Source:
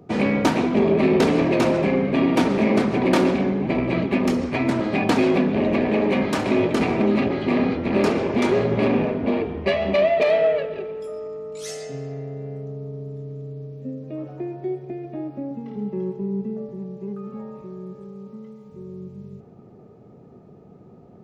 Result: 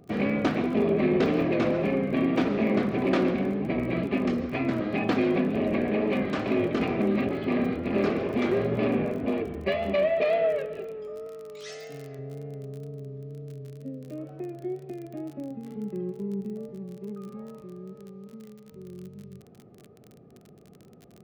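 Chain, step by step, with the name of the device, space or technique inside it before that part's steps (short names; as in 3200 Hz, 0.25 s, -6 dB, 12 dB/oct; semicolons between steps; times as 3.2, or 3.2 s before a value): lo-fi chain (LPF 3700 Hz 12 dB/oct; wow and flutter; crackle 34/s -32 dBFS); notch 910 Hz, Q 5.9; 11.27–12.19 tilt shelf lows -5 dB, about 730 Hz; gain -5.5 dB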